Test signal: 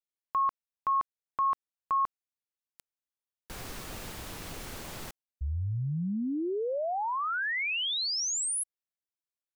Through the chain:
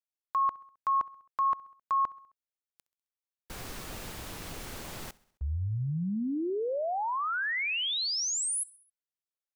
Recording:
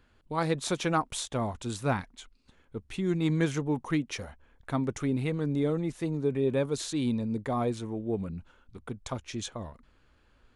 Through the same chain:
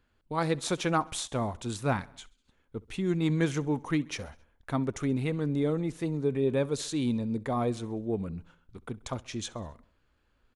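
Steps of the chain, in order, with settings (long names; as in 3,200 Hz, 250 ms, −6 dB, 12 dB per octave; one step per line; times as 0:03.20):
noise gate −54 dBFS, range −7 dB
repeating echo 66 ms, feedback 59%, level −23.5 dB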